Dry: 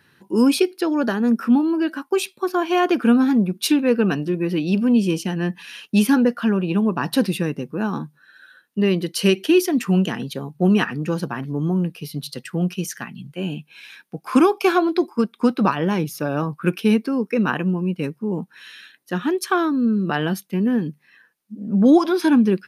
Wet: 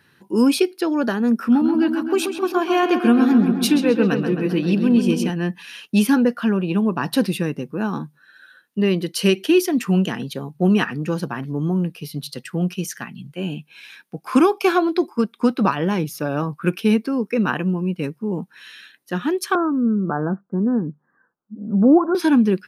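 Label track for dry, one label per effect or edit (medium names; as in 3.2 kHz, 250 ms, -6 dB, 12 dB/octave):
1.350000	5.300000	filtered feedback delay 132 ms, feedback 67%, low-pass 3.9 kHz, level -7 dB
19.550000	22.150000	steep low-pass 1.5 kHz 72 dB/octave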